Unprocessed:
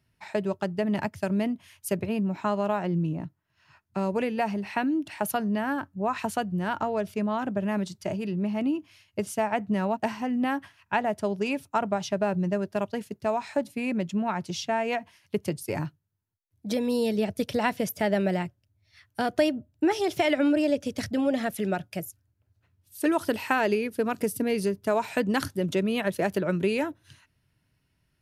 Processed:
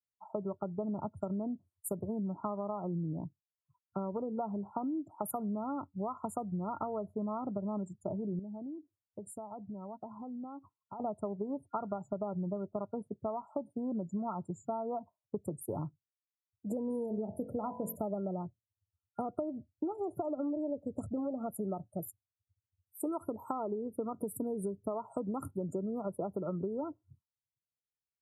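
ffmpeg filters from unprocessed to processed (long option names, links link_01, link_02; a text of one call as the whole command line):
ffmpeg -i in.wav -filter_complex "[0:a]asettb=1/sr,asplit=3[link_01][link_02][link_03];[link_01]atrim=end=8.394[link_04];[link_02]atrim=start=8.39:end=11,asetpts=PTS-STARTPTS,afade=type=in:duration=0.004:curve=qsin,afade=type=out:start_time=2.606:duration=0.004:curve=qsin,acompressor=threshold=-38dB:ratio=4:attack=3.2:release=140:knee=1:detection=peak[link_05];[link_03]atrim=start=10.996[link_06];[link_04][link_05]acrossfade=duration=0.004:curve1=hsin:curve2=qsin[link_07];[link_07][link_06]acrossfade=duration=0.004:curve1=qsin:curve2=hsin,asettb=1/sr,asplit=3[link_08][link_09][link_10];[link_08]atrim=end=16.884[link_11];[link_09]atrim=start=16.88:end=17.96,asetpts=PTS-STARTPTS,afade=type=in:duration=0.004:curve=qsin,afade=type=out:start_time=1.076:duration=0.004:curve=qsin,bandreject=frequency=45.1:width_type=h:width=4,bandreject=frequency=90.2:width_type=h:width=4,bandreject=frequency=135.3:width_type=h:width=4,bandreject=frequency=180.4:width_type=h:width=4,bandreject=frequency=225.5:width_type=h:width=4,bandreject=frequency=270.6:width_type=h:width=4,bandreject=frequency=315.7:width_type=h:width=4,bandreject=frequency=360.8:width_type=h:width=4,bandreject=frequency=405.9:width_type=h:width=4,bandreject=frequency=451:width_type=h:width=4,bandreject=frequency=496.1:width_type=h:width=4,bandreject=frequency=541.2:width_type=h:width=4,bandreject=frequency=586.3:width_type=h:width=4,bandreject=frequency=631.4:width_type=h:width=4,bandreject=frequency=676.5:width_type=h:width=4,bandreject=frequency=721.6:width_type=h:width=4,bandreject=frequency=766.7:width_type=h:width=4,bandreject=frequency=811.8:width_type=h:width=4,bandreject=frequency=856.9:width_type=h:width=4,bandreject=frequency=902:width_type=h:width=4,bandreject=frequency=947.1:width_type=h:width=4,bandreject=frequency=992.2:width_type=h:width=4,bandreject=frequency=1037.3:width_type=h:width=4[link_12];[link_10]atrim=start=17.956[link_13];[link_11][link_12]acrossfade=duration=0.004:curve1=hsin:curve2=qsin[link_14];[link_14][link_13]acrossfade=duration=0.004:curve1=qsin:curve2=hsin,afftfilt=real='re*(1-between(b*sr/4096,1400,6900))':imag='im*(1-between(b*sr/4096,1400,6900))':win_size=4096:overlap=0.75,acompressor=threshold=-28dB:ratio=10,afftdn=noise_reduction=34:noise_floor=-46,volume=-4dB" out.wav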